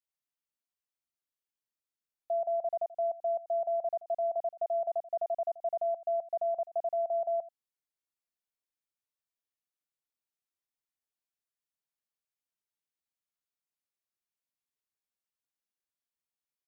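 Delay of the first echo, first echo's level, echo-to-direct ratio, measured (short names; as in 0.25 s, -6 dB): 85 ms, -18.0 dB, -18.0 dB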